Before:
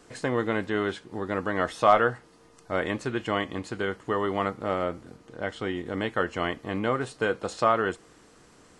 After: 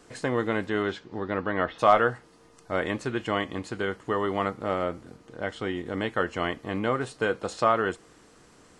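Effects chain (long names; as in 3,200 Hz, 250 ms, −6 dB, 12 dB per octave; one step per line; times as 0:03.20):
0:00.82–0:01.78: low-pass filter 7,700 Hz → 3,200 Hz 24 dB per octave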